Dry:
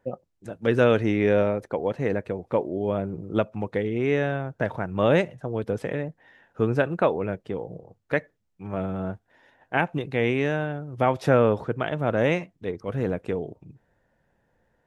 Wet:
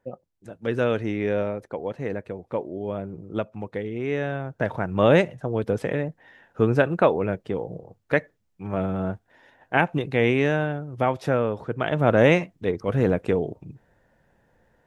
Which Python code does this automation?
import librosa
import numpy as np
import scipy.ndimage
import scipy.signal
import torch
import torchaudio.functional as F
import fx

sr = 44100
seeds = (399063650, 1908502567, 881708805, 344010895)

y = fx.gain(x, sr, db=fx.line((4.04, -4.0), (4.89, 3.0), (10.68, 3.0), (11.53, -5.5), (11.99, 5.5)))